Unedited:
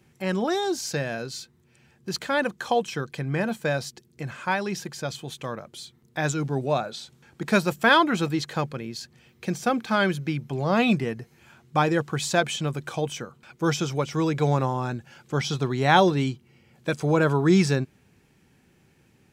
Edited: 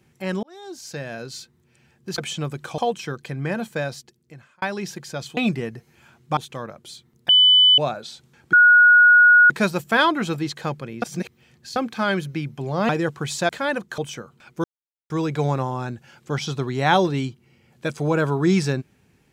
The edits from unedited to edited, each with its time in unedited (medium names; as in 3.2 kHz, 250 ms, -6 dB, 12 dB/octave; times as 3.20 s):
0.43–1.35 s: fade in
2.18–2.67 s: swap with 12.41–13.01 s
3.62–4.51 s: fade out
6.18–6.67 s: bleep 3 kHz -10 dBFS
7.42 s: add tone 1.45 kHz -8.5 dBFS 0.97 s
8.94–9.68 s: reverse
10.81–11.81 s: move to 5.26 s
13.67–14.13 s: mute